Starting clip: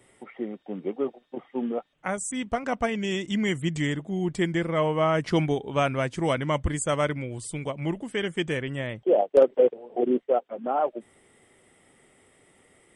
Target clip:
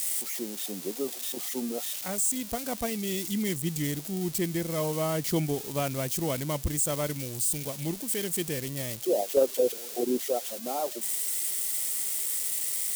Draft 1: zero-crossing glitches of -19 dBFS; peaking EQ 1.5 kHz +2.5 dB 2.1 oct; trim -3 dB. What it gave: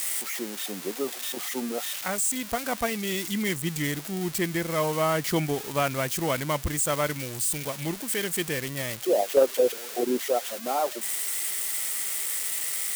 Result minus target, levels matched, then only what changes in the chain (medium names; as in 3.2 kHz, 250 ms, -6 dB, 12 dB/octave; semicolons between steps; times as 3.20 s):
2 kHz band +7.0 dB
change: peaking EQ 1.5 kHz -8 dB 2.1 oct